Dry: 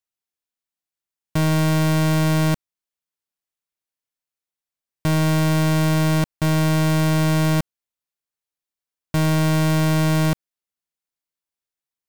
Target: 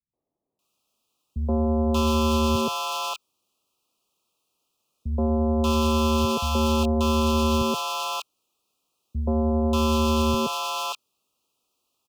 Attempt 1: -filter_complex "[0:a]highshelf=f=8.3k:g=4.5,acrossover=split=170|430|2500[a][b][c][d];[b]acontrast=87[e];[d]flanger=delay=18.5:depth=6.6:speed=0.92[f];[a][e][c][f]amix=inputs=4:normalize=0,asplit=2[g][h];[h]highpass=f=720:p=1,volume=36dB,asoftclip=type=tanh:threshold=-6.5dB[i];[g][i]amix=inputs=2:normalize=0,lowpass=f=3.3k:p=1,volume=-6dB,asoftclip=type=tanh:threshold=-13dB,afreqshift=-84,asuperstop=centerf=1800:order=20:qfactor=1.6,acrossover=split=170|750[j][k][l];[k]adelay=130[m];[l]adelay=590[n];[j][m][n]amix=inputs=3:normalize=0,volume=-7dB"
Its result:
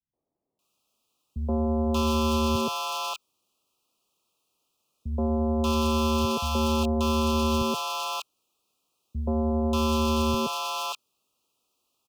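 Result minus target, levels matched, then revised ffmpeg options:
soft clip: distortion +10 dB
-filter_complex "[0:a]highshelf=f=8.3k:g=4.5,acrossover=split=170|430|2500[a][b][c][d];[b]acontrast=87[e];[d]flanger=delay=18.5:depth=6.6:speed=0.92[f];[a][e][c][f]amix=inputs=4:normalize=0,asplit=2[g][h];[h]highpass=f=720:p=1,volume=36dB,asoftclip=type=tanh:threshold=-6.5dB[i];[g][i]amix=inputs=2:normalize=0,lowpass=f=3.3k:p=1,volume=-6dB,asoftclip=type=tanh:threshold=-6dB,afreqshift=-84,asuperstop=centerf=1800:order=20:qfactor=1.6,acrossover=split=170|750[j][k][l];[k]adelay=130[m];[l]adelay=590[n];[j][m][n]amix=inputs=3:normalize=0,volume=-7dB"

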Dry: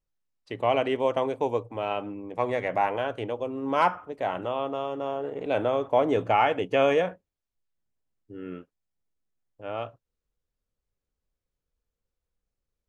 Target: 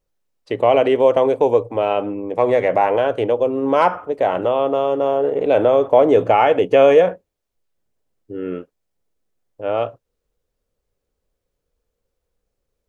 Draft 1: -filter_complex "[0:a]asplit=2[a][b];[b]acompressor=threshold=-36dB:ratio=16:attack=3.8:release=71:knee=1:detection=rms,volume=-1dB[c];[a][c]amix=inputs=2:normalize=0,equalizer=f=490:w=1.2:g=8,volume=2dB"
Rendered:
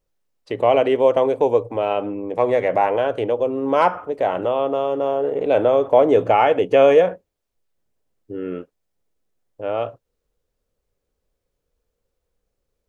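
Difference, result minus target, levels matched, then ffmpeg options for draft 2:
compressor: peak gain reduction +9.5 dB
-filter_complex "[0:a]asplit=2[a][b];[b]acompressor=threshold=-26dB:ratio=16:attack=3.8:release=71:knee=1:detection=rms,volume=-1dB[c];[a][c]amix=inputs=2:normalize=0,equalizer=f=490:w=1.2:g=8,volume=2dB"

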